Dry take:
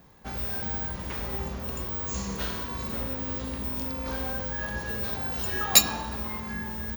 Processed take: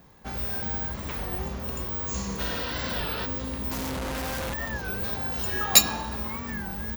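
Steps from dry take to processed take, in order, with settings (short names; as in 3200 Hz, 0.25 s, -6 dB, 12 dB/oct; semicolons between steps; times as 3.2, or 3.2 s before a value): 2.47–3.23 spectral repair 250–5800 Hz before; 3.71–4.54 Schmitt trigger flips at -34.5 dBFS; record warp 33 1/3 rpm, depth 160 cents; gain +1 dB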